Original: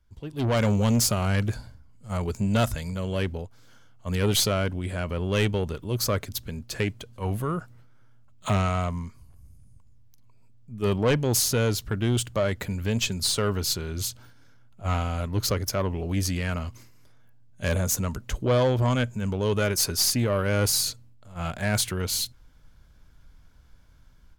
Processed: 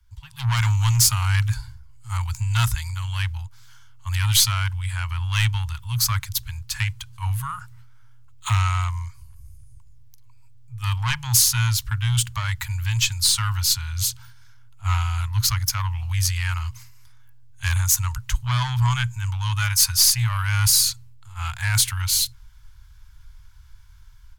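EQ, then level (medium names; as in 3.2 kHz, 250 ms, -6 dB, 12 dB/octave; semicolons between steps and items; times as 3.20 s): Chebyshev band-stop 120–900 Hz, order 4; bass shelf 120 Hz +5 dB; treble shelf 3.8 kHz +6 dB; +3.5 dB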